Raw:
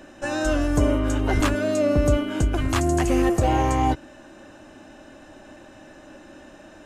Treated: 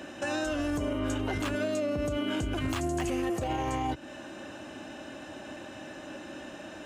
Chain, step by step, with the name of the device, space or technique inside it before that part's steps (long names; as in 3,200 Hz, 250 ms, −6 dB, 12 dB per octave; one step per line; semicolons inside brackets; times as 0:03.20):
broadcast voice chain (high-pass filter 83 Hz 12 dB per octave; de-essing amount 55%; downward compressor 4 to 1, threshold −28 dBFS, peak gain reduction 11 dB; parametric band 3,000 Hz +4.5 dB 0.84 octaves; brickwall limiter −25 dBFS, peak gain reduction 7.5 dB)
level +2.5 dB